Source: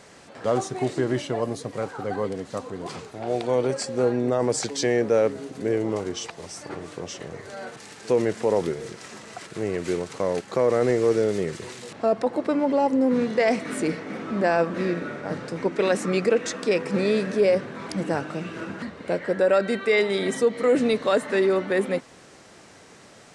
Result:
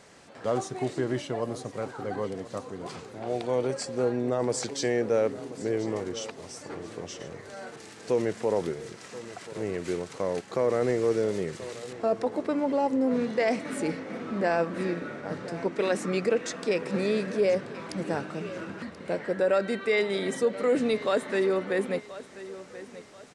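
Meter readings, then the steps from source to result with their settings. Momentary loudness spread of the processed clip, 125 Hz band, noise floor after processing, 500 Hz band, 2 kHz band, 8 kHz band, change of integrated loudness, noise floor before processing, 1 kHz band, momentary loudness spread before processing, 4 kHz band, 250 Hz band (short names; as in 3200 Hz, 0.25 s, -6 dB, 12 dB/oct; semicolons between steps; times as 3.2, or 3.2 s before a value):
15 LU, -4.5 dB, -47 dBFS, -4.5 dB, -4.5 dB, -4.5 dB, -4.5 dB, -49 dBFS, -4.5 dB, 14 LU, -4.5 dB, -4.5 dB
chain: feedback echo 1.032 s, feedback 35%, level -16 dB; gain -4.5 dB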